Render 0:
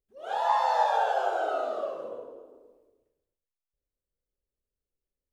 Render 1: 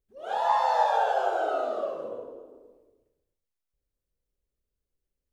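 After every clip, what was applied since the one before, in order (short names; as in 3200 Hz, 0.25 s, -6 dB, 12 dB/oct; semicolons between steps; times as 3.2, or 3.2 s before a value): low shelf 350 Hz +6.5 dB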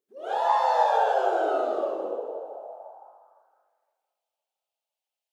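split-band echo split 920 Hz, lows 0.512 s, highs 0.178 s, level -15.5 dB; high-pass sweep 330 Hz -> 2800 Hz, 2.05–4.23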